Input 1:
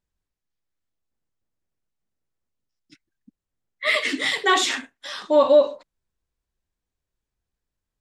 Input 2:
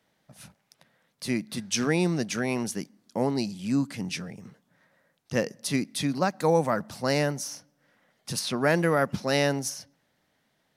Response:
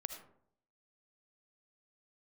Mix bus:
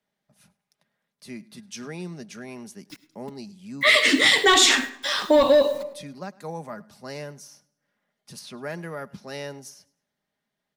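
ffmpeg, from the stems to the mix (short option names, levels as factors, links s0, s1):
-filter_complex "[0:a]acontrast=85,acrusher=bits=7:mix=0:aa=0.000001,volume=0.841,asplit=4[s0][s1][s2][s3];[s1]volume=0.501[s4];[s2]volume=0.126[s5];[1:a]aecho=1:1:4.9:0.4,volume=0.266,asplit=2[s6][s7];[s7]volume=0.0708[s8];[s3]apad=whole_len=475136[s9];[s6][s9]sidechaincompress=threshold=0.0112:ratio=8:attack=16:release=150[s10];[2:a]atrim=start_sample=2205[s11];[s4][s11]afir=irnorm=-1:irlink=0[s12];[s5][s8]amix=inputs=2:normalize=0,aecho=0:1:103|206|309|412:1|0.29|0.0841|0.0244[s13];[s0][s10][s12][s13]amix=inputs=4:normalize=0,acrossover=split=260|3000[s14][s15][s16];[s15]acompressor=threshold=0.126:ratio=3[s17];[s14][s17][s16]amix=inputs=3:normalize=0"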